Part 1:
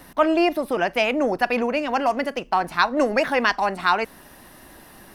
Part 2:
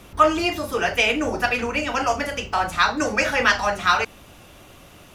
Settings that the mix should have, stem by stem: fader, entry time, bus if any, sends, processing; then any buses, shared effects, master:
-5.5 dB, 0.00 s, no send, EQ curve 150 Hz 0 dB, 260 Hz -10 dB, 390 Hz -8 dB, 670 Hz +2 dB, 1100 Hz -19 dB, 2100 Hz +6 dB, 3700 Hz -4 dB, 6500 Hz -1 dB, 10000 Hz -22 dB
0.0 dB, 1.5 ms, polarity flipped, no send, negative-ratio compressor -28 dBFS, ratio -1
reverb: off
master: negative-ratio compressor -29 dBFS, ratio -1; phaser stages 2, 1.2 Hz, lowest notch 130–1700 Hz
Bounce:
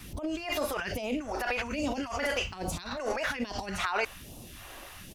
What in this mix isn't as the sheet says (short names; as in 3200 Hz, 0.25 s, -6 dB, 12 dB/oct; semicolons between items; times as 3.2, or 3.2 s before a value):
stem 1: missing EQ curve 150 Hz 0 dB, 260 Hz -10 dB, 390 Hz -8 dB, 670 Hz +2 dB, 1100 Hz -19 dB, 2100 Hz +6 dB, 3700 Hz -4 dB, 6500 Hz -1 dB, 10000 Hz -22 dB; stem 2 0.0 dB -> -8.5 dB